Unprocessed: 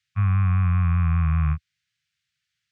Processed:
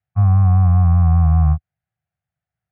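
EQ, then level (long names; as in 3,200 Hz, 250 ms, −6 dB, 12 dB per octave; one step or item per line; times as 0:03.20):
low-pass with resonance 730 Hz, resonance Q 6.9
low-shelf EQ 100 Hz +6.5 dB
+4.0 dB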